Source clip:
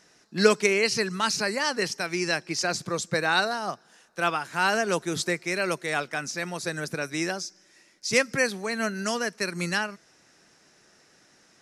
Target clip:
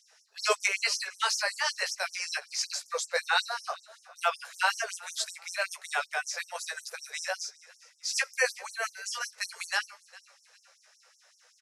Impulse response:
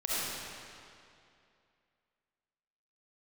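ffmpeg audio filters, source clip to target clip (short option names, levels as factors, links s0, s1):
-filter_complex "[0:a]asplit=2[s0][s1];[s1]adelay=16,volume=0.562[s2];[s0][s2]amix=inputs=2:normalize=0,asplit=4[s3][s4][s5][s6];[s4]adelay=406,afreqshift=-41,volume=0.0891[s7];[s5]adelay=812,afreqshift=-82,volume=0.0355[s8];[s6]adelay=1218,afreqshift=-123,volume=0.0143[s9];[s3][s7][s8][s9]amix=inputs=4:normalize=0,afftfilt=real='re*gte(b*sr/1024,410*pow(5400/410,0.5+0.5*sin(2*PI*5.3*pts/sr)))':imag='im*gte(b*sr/1024,410*pow(5400/410,0.5+0.5*sin(2*PI*5.3*pts/sr)))':win_size=1024:overlap=0.75,volume=0.75"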